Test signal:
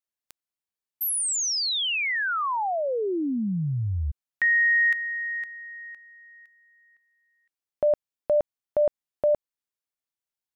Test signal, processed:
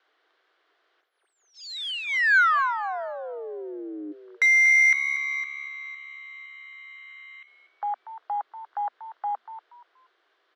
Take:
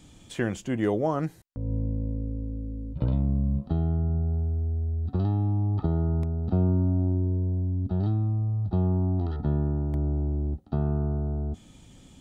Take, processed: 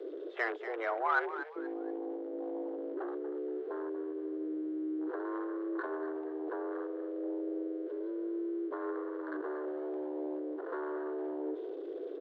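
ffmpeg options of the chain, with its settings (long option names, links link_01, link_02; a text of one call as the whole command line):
ffmpeg -i in.wav -filter_complex "[0:a]aeval=exprs='val(0)+0.5*0.0188*sgn(val(0))':channel_layout=same,highpass=140,equalizer=frequency=220:width_type=q:width=4:gain=-4,equalizer=frequency=330:width_type=q:width=4:gain=-10,equalizer=frequency=650:width_type=q:width=4:gain=-9,equalizer=frequency=1300:width_type=q:width=4:gain=5,equalizer=frequency=2300:width_type=q:width=4:gain=-7,lowpass=frequency=3100:width=0.5412,lowpass=frequency=3100:width=1.3066,acrossover=split=700[link_01][link_02];[link_01]acompressor=threshold=-38dB:ratio=20:attack=0.33:release=91:knee=1:detection=rms[link_03];[link_03][link_02]amix=inputs=2:normalize=0,afwtdn=0.01,asplit=2[link_04][link_05];[link_05]adynamicsmooth=sensitivity=1.5:basefreq=1100,volume=1dB[link_06];[link_04][link_06]amix=inputs=2:normalize=0,asplit=4[link_07][link_08][link_09][link_10];[link_08]adelay=238,afreqshift=70,volume=-12dB[link_11];[link_09]adelay=476,afreqshift=140,volume=-22.5dB[link_12];[link_10]adelay=714,afreqshift=210,volume=-32.9dB[link_13];[link_07][link_11][link_12][link_13]amix=inputs=4:normalize=0,afreqshift=230,volume=-1.5dB" out.wav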